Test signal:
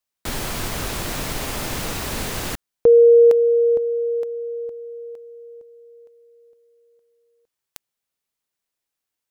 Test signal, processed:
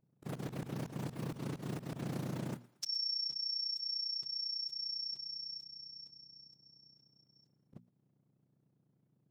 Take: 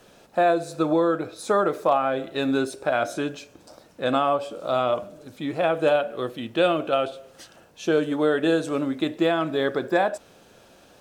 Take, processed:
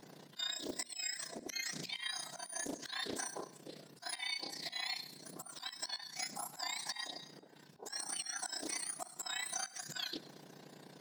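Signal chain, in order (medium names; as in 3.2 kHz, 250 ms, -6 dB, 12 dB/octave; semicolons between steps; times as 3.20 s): spectrum inverted on a logarithmic axis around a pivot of 1.6 kHz; AM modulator 30 Hz, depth 60%; slow attack 288 ms; compression 8:1, threshold -37 dBFS; hum notches 60/120/180/240 Hz; thinning echo 115 ms, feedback 43%, high-pass 340 Hz, level -19.5 dB; loudspeaker Doppler distortion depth 0.35 ms; trim +1 dB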